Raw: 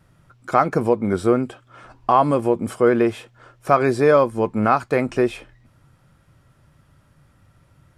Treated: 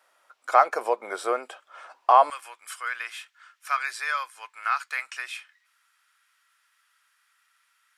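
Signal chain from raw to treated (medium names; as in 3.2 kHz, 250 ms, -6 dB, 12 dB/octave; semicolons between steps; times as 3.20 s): high-pass 590 Hz 24 dB/octave, from 2.30 s 1.4 kHz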